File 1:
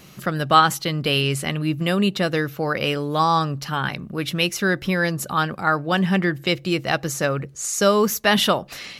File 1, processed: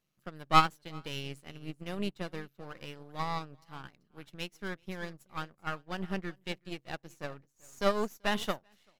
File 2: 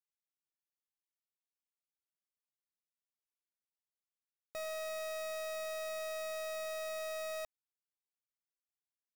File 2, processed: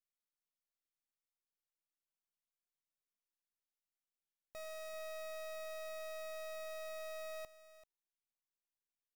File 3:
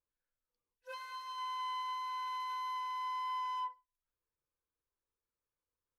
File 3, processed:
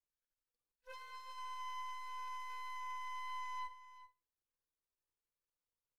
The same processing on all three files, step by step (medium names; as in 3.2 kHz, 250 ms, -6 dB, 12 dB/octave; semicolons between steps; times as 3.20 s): partial rectifier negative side -12 dB; delay 387 ms -14.5 dB; upward expansion 2.5:1, over -33 dBFS; trim -3 dB